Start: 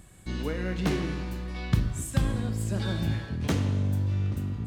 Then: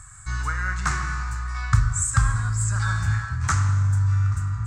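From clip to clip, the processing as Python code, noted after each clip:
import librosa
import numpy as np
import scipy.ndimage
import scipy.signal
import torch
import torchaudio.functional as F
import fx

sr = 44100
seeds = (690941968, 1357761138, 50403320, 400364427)

y = fx.curve_eq(x, sr, hz=(120.0, 200.0, 500.0, 1300.0, 3100.0, 7700.0, 12000.0), db=(0, -21, -25, 12, -14, 10, -16))
y = y * librosa.db_to_amplitude(7.0)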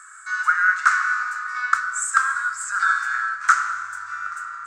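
y = fx.highpass_res(x, sr, hz=1400.0, q=6.0)
y = y * librosa.db_to_amplitude(-1.5)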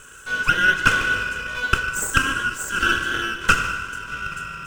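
y = fx.lower_of_two(x, sr, delay_ms=2.0)
y = y + 10.0 ** (-16.0 / 20.0) * np.pad(y, (int(150 * sr / 1000.0), 0))[:len(y)]
y = y * librosa.db_to_amplitude(1.5)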